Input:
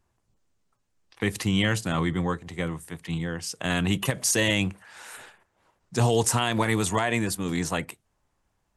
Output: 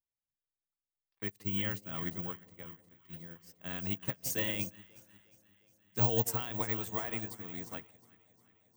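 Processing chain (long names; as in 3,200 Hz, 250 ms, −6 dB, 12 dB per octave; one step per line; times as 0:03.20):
bad sample-rate conversion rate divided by 2×, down filtered, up zero stuff
delay that swaps between a low-pass and a high-pass 179 ms, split 800 Hz, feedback 85%, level −9 dB
expander for the loud parts 2.5 to 1, over −32 dBFS
level −8 dB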